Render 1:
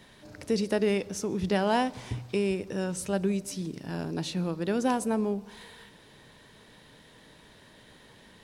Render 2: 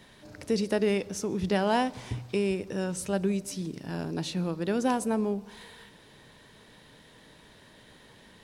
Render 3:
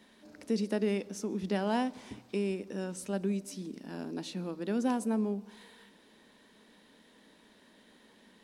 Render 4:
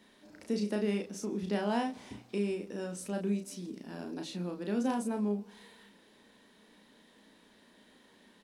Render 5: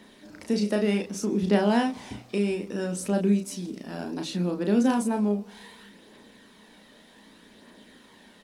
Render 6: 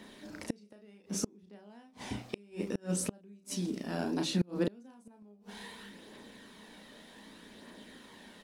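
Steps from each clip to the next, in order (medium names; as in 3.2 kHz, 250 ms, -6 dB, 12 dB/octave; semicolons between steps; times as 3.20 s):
no audible change
resonant low shelf 170 Hz -8 dB, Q 3; trim -7 dB
doubling 34 ms -4.5 dB; trim -2 dB
phaser 0.65 Hz, delay 1.7 ms, feedback 29%; trim +8 dB
inverted gate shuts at -19 dBFS, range -32 dB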